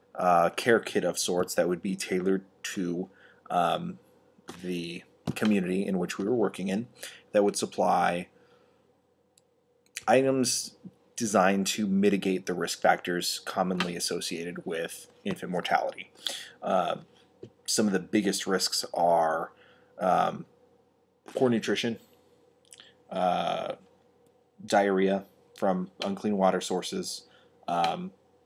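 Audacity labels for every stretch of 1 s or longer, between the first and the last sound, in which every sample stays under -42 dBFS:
8.250000	9.380000	silence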